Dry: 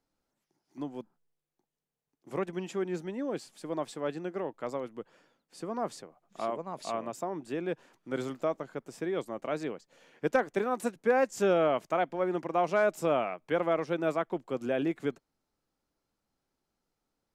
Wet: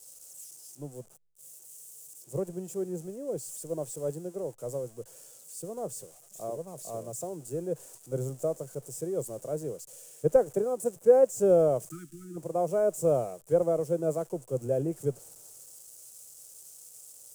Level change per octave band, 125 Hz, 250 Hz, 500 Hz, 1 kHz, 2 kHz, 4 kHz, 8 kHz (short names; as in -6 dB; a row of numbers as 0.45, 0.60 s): +6.0 dB, -2.0 dB, +3.5 dB, -6.0 dB, under -15 dB, n/a, +10.0 dB